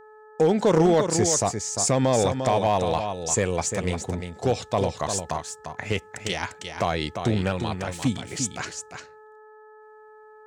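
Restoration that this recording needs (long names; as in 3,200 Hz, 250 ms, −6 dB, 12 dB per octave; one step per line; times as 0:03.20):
clipped peaks rebuilt −12.5 dBFS
hum removal 430.2 Hz, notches 4
echo removal 349 ms −7.5 dB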